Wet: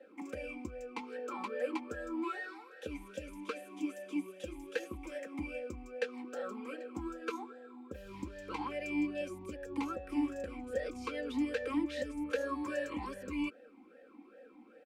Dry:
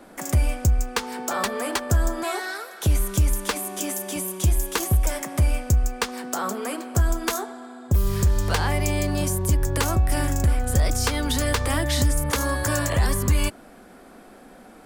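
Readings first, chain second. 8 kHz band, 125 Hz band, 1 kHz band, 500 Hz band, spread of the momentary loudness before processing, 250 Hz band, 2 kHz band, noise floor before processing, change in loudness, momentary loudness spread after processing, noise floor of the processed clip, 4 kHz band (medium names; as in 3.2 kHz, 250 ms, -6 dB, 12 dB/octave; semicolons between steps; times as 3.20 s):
-30.0 dB, -31.5 dB, -14.5 dB, -9.5 dB, 6 LU, -8.0 dB, -13.5 dB, -47 dBFS, -15.5 dB, 13 LU, -59 dBFS, -20.5 dB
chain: comb 3.8 ms, depth 80%; talking filter e-u 2.5 Hz; trim -2 dB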